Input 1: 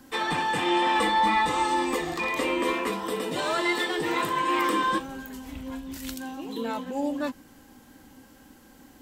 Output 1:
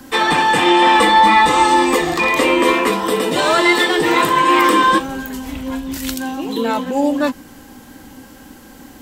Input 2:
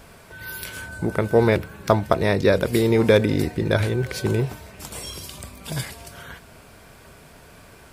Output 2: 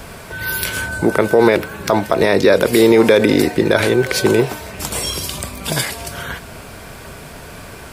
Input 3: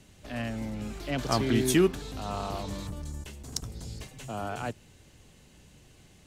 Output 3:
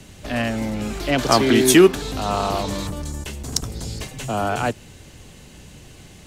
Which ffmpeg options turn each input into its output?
-filter_complex "[0:a]acrossover=split=230[s0][s1];[s0]acompressor=threshold=0.01:ratio=6[s2];[s2][s1]amix=inputs=2:normalize=0,alimiter=level_in=4.73:limit=0.891:release=50:level=0:latency=1,volume=0.891"

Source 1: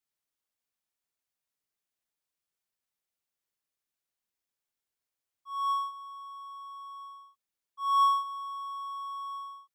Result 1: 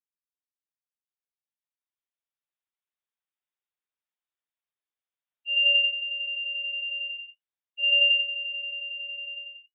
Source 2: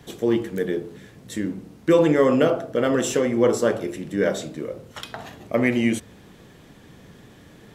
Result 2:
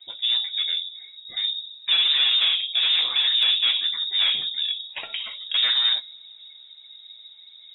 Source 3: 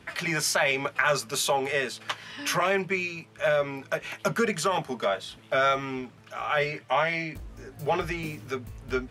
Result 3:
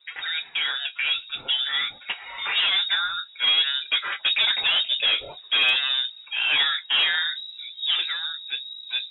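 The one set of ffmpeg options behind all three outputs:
-filter_complex "[0:a]afftdn=nr=16:nf=-45,acrossover=split=2600[s0][s1];[s1]acompressor=threshold=0.00708:ratio=4:attack=1:release=60[s2];[s0][s2]amix=inputs=2:normalize=0,equalizer=f=120:t=o:w=0.82:g=4.5,acrossover=split=120[s3][s4];[s4]dynaudnorm=f=240:g=17:m=3.98[s5];[s3][s5]amix=inputs=2:normalize=0,asoftclip=type=tanh:threshold=0.119,lowpass=f=3300:t=q:w=0.5098,lowpass=f=3300:t=q:w=0.6013,lowpass=f=3300:t=q:w=0.9,lowpass=f=3300:t=q:w=2.563,afreqshift=-3900,flanger=delay=5.4:depth=4.1:regen=-62:speed=0.48:shape=triangular,asoftclip=type=hard:threshold=0.158,volume=1.78"

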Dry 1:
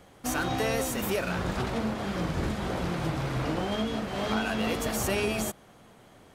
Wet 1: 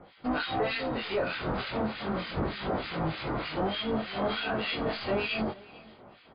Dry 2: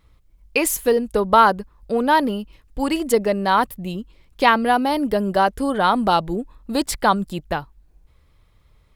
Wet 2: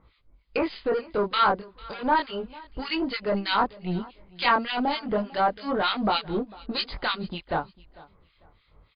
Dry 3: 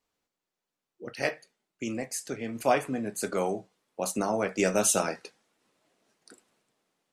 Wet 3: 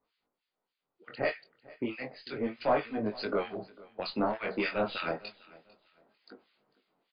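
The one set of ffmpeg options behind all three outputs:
-filter_complex "[0:a]lowshelf=f=160:g=-7.5,bandreject=f=1700:w=21,asplit=2[s0][s1];[s1]acompressor=threshold=0.0398:ratio=6,volume=0.794[s2];[s0][s2]amix=inputs=2:normalize=0,flanger=delay=19:depth=5.9:speed=0.32,acrossover=split=1200[s3][s4];[s3]asoftclip=type=tanh:threshold=0.0531[s5];[s5][s4]amix=inputs=2:normalize=0,acrossover=split=1500[s6][s7];[s6]aeval=exprs='val(0)*(1-1/2+1/2*cos(2*PI*3.3*n/s))':c=same[s8];[s7]aeval=exprs='val(0)*(1-1/2-1/2*cos(2*PI*3.3*n/s))':c=same[s9];[s8][s9]amix=inputs=2:normalize=0,aeval=exprs='0.2*(cos(1*acos(clip(val(0)/0.2,-1,1)))-cos(1*PI/2))+0.0112*(cos(2*acos(clip(val(0)/0.2,-1,1)))-cos(2*PI/2))+0.0158*(cos(4*acos(clip(val(0)/0.2,-1,1)))-cos(4*PI/2))+0.01*(cos(6*acos(clip(val(0)/0.2,-1,1)))-cos(6*PI/2))':c=same,aecho=1:1:448|896:0.0794|0.0207,volume=1.78" -ar 11025 -c:a libmp3lame -b:a 48k

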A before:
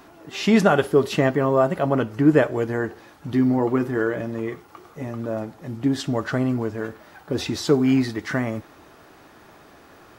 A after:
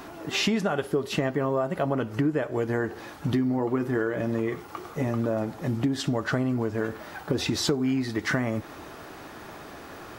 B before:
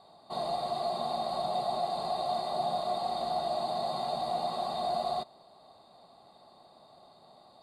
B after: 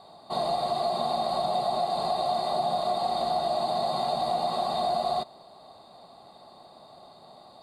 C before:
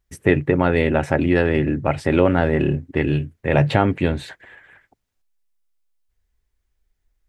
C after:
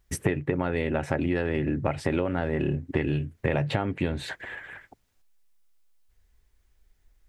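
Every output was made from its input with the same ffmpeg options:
-af "acompressor=threshold=0.0355:ratio=10,volume=2.11"

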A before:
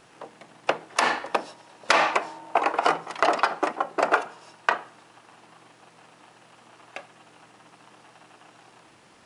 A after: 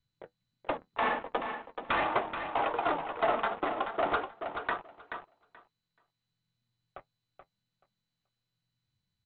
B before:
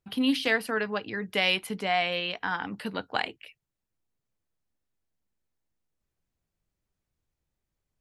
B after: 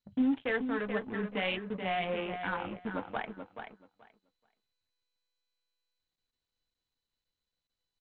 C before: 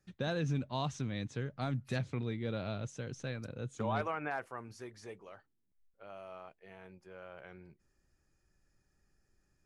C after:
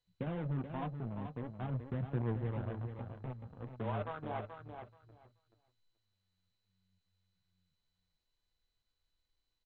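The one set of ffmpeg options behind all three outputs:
-filter_complex "[0:a]aemphasis=mode=reproduction:type=75fm,afwtdn=0.0158,lowshelf=f=69:g=7.5,acrossover=split=160|2500[s0][s1][s2];[s1]acrusher=bits=5:mix=0:aa=0.5[s3];[s0][s3][s2]amix=inputs=3:normalize=0,asoftclip=type=tanh:threshold=0.119,aphaser=in_gain=1:out_gain=1:delay=4.6:decay=0.34:speed=0.45:type=sinusoidal,acrusher=bits=6:mode=log:mix=0:aa=0.000001,flanger=delay=8.2:depth=3.1:regen=-52:speed=1.8:shape=sinusoidal,adynamicsmooth=sensitivity=7:basefreq=1000,asplit=2[s4][s5];[s5]aecho=0:1:430|860|1290:0.398|0.0637|0.0102[s6];[s4][s6]amix=inputs=2:normalize=0,aresample=8000,aresample=44100" -ar 16000 -c:a mp2 -b:a 64k

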